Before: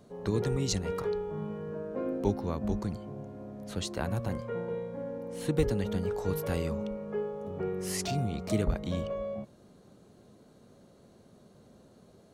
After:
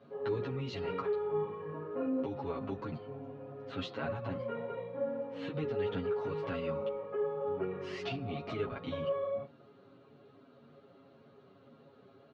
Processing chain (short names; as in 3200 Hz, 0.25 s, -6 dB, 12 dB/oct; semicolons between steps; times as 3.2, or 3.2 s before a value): comb 7.3 ms, depth 98%; de-hum 176.1 Hz, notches 30; limiter -23.5 dBFS, peak gain reduction 10.5 dB; speaker cabinet 120–3600 Hz, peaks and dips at 170 Hz -3 dB, 1300 Hz +6 dB, 2700 Hz +4 dB; ensemble effect